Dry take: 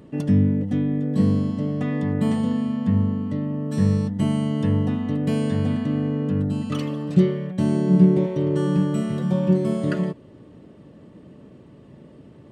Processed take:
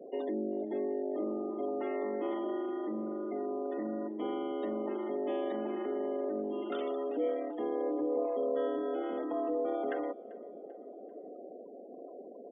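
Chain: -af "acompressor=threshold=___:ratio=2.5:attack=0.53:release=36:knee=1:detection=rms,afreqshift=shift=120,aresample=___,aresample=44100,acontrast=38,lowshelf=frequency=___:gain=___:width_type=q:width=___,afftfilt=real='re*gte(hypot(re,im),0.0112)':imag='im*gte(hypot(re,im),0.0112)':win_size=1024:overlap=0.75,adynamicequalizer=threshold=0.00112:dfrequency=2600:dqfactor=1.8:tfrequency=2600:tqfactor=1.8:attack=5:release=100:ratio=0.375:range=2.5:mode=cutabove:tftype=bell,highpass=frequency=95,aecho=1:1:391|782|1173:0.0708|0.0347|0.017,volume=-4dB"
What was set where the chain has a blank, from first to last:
-33dB, 8000, 380, -7, 1.5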